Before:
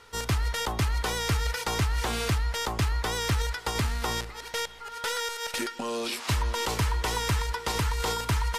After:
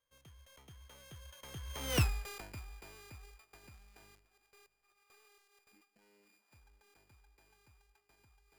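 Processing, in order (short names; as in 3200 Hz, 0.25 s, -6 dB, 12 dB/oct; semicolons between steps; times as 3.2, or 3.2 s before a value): sample sorter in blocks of 16 samples; Doppler pass-by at 1.99, 48 m/s, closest 2.8 m; gain -2 dB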